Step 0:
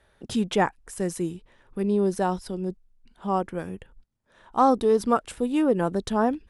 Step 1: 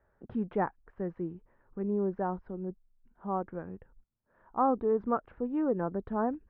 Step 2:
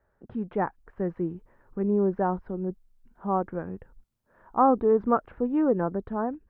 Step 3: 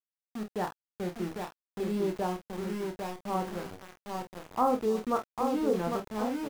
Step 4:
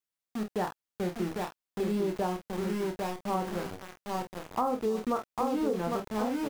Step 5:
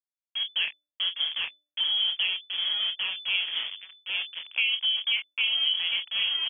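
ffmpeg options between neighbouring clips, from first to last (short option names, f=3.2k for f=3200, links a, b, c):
-af "lowpass=f=1.6k:w=0.5412,lowpass=f=1.6k:w=1.3066,volume=-7.5dB"
-af "dynaudnorm=f=110:g=13:m=6.5dB"
-filter_complex "[0:a]asplit=2[a][b];[b]adelay=800,lowpass=f=1.8k:p=1,volume=-4.5dB,asplit=2[c][d];[d]adelay=800,lowpass=f=1.8k:p=1,volume=0.37,asplit=2[e][f];[f]adelay=800,lowpass=f=1.8k:p=1,volume=0.37,asplit=2[g][h];[h]adelay=800,lowpass=f=1.8k:p=1,volume=0.37,asplit=2[i][j];[j]adelay=800,lowpass=f=1.8k:p=1,volume=0.37[k];[c][e][g][i][k]amix=inputs=5:normalize=0[l];[a][l]amix=inputs=2:normalize=0,aeval=exprs='val(0)*gte(abs(val(0)),0.0266)':c=same,asplit=2[m][n];[n]aecho=0:1:28|47:0.447|0.299[o];[m][o]amix=inputs=2:normalize=0,volume=-6.5dB"
-af "acompressor=threshold=-29dB:ratio=6,volume=3.5dB"
-af "anlmdn=0.251,lowpass=f=3k:t=q:w=0.5098,lowpass=f=3k:t=q:w=0.6013,lowpass=f=3k:t=q:w=0.9,lowpass=f=3k:t=q:w=2.563,afreqshift=-3500,bandreject=f=296.1:t=h:w=4,bandreject=f=592.2:t=h:w=4,volume=3dB"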